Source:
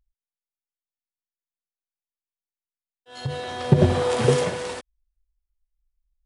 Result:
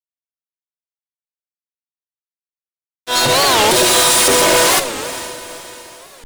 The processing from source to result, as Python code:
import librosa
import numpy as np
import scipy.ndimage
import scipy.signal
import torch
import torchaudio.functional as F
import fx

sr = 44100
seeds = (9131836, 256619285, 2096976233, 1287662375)

p1 = scipy.signal.sosfilt(scipy.signal.butter(2, 320.0, 'highpass', fs=sr, output='sos'), x)
p2 = fx.high_shelf(p1, sr, hz=5300.0, db=9.0)
p3 = p2 + 0.75 * np.pad(p2, (int(3.2 * sr / 1000.0), 0))[:len(p2)]
p4 = fx.tilt_eq(p3, sr, slope=4.0, at=(3.71, 4.28))
p5 = fx.over_compress(p4, sr, threshold_db=-28.0, ratio=-0.5)
p6 = p4 + (p5 * 10.0 ** (1.0 / 20.0))
p7 = fx.fuzz(p6, sr, gain_db=33.0, gate_db=-42.0)
p8 = fx.echo_diffused(p7, sr, ms=453, feedback_pct=46, wet_db=-14)
p9 = fx.room_shoebox(p8, sr, seeds[0], volume_m3=1500.0, walls='mixed', distance_m=0.72)
p10 = fx.record_warp(p9, sr, rpm=45.0, depth_cents=250.0)
y = p10 * 10.0 ** (1.5 / 20.0)